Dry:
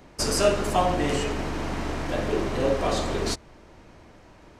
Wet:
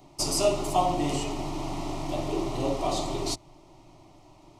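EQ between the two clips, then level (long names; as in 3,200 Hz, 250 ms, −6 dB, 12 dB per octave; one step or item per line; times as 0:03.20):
phaser with its sweep stopped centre 320 Hz, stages 8
0.0 dB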